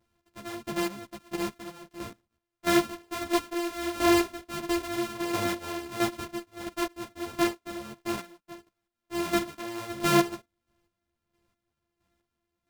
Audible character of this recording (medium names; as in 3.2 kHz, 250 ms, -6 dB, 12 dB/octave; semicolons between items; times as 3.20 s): a buzz of ramps at a fixed pitch in blocks of 128 samples; chopped level 1.5 Hz, depth 65%, duty 30%; a shimmering, thickened sound